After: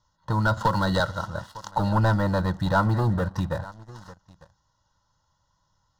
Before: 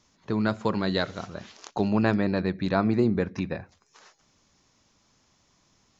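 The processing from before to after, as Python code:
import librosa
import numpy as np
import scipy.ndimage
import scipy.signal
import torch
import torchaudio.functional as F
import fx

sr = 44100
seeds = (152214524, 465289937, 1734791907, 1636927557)

y = scipy.signal.sosfilt(scipy.signal.butter(2, 4200.0, 'lowpass', fs=sr, output='sos'), x)
y = y + 0.75 * np.pad(y, (int(2.1 * sr / 1000.0), 0))[:len(y)]
y = y + 10.0 ** (-21.0 / 20.0) * np.pad(y, (int(900 * sr / 1000.0), 0))[:len(y)]
y = fx.leveller(y, sr, passes=2)
y = fx.fixed_phaser(y, sr, hz=980.0, stages=4)
y = fx.band_squash(y, sr, depth_pct=70, at=(0.57, 1.0))
y = F.gain(torch.from_numpy(y), 1.0).numpy()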